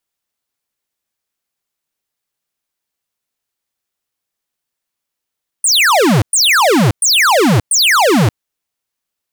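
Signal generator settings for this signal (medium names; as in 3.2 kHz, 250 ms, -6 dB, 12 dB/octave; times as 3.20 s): burst of laser zaps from 9.7 kHz, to 92 Hz, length 0.58 s square, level -10 dB, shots 4, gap 0.11 s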